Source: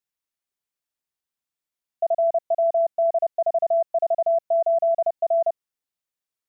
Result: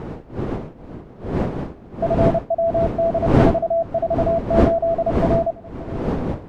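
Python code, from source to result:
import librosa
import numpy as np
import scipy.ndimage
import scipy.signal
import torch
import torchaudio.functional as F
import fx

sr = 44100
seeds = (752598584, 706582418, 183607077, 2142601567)

y = fx.dmg_wind(x, sr, seeds[0], corner_hz=370.0, level_db=-24.0)
y = y + 10.0 ** (-21.0 / 20.0) * np.pad(y, (int(577 * sr / 1000.0), 0))[:len(y)]
y = y * 10.0 ** (1.5 / 20.0)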